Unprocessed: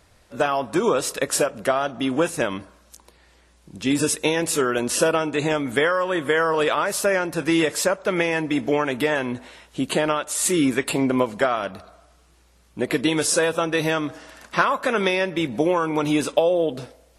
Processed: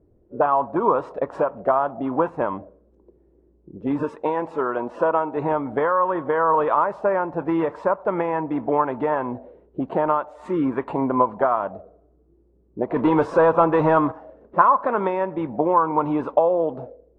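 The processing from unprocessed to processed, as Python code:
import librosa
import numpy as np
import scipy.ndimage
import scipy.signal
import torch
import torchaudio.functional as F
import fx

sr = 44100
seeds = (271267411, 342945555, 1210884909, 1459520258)

y = fx.low_shelf(x, sr, hz=160.0, db=-11.0, at=(4.03, 5.37))
y = fx.leveller(y, sr, passes=2, at=(12.96, 14.12))
y = fx.envelope_lowpass(y, sr, base_hz=360.0, top_hz=1000.0, q=4.0, full_db=-19.5, direction='up')
y = y * 10.0 ** (-3.0 / 20.0)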